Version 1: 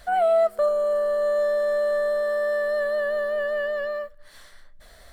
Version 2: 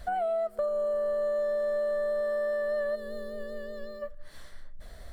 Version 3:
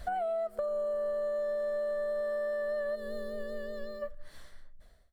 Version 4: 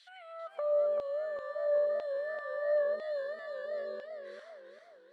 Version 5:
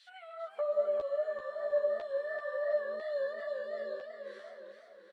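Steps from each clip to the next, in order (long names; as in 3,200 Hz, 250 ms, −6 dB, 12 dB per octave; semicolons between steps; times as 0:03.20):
gain on a spectral selection 0:02.96–0:04.02, 510–3,300 Hz −14 dB; downward compressor, threshold −27 dBFS, peak gain reduction 10 dB; low-shelf EQ 470 Hz +11.5 dB; level −4.5 dB
fade-out on the ending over 1.08 s; downward compressor, threshold −30 dBFS, peak gain reduction 4.5 dB
high-frequency loss of the air 93 metres; auto-filter high-pass saw down 1 Hz 310–3,600 Hz; feedback echo with a swinging delay time 391 ms, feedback 45%, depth 101 cents, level −7 dB; level −2 dB
multi-voice chorus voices 4, 1.1 Hz, delay 12 ms, depth 3 ms; single-tap delay 710 ms −13 dB; level +3 dB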